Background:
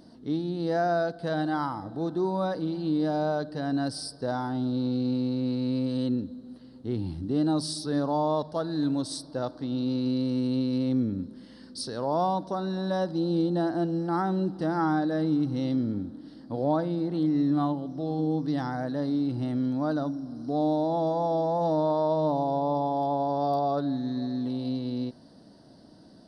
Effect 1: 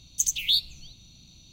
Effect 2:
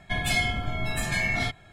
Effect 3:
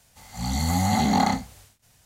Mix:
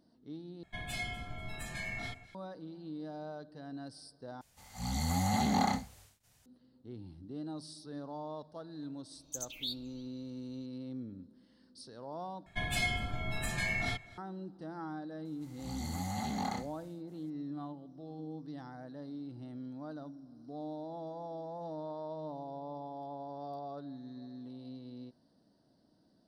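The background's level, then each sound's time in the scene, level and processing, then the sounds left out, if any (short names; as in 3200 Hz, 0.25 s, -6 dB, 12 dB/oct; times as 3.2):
background -16.5 dB
0.63 replace with 2 -14 dB + echo with dull and thin repeats by turns 0.122 s, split 1400 Hz, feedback 62%, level -13.5 dB
4.41 replace with 3 -8.5 dB
9.14 add 1 -16 dB + notch 2900 Hz, Q 21
12.46 replace with 2 -7.5 dB + echo 0.243 s -22 dB
15.25 add 3 -15 dB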